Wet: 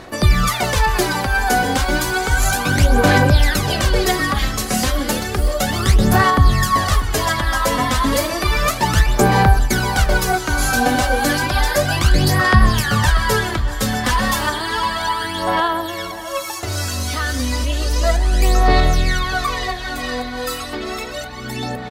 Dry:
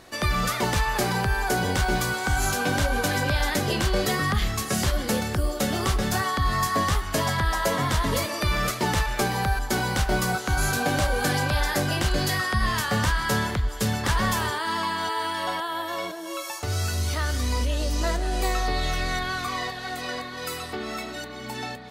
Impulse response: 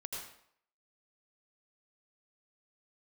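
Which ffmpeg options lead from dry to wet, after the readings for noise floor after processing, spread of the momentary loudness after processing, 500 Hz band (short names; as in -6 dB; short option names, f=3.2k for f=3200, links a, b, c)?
-28 dBFS, 11 LU, +7.5 dB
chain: -filter_complex "[0:a]aphaser=in_gain=1:out_gain=1:delay=4:decay=0.64:speed=0.32:type=sinusoidal,asplit=2[a][b];[b]adelay=640,lowpass=f=4.7k:p=1,volume=-16dB,asplit=2[c][d];[d]adelay=640,lowpass=f=4.7k:p=1,volume=0.51,asplit=2[e][f];[f]adelay=640,lowpass=f=4.7k:p=1,volume=0.51,asplit=2[g][h];[h]adelay=640,lowpass=f=4.7k:p=1,volume=0.51,asplit=2[i][j];[j]adelay=640,lowpass=f=4.7k:p=1,volume=0.51[k];[a][c][e][g][i][k]amix=inputs=6:normalize=0,volume=4.5dB"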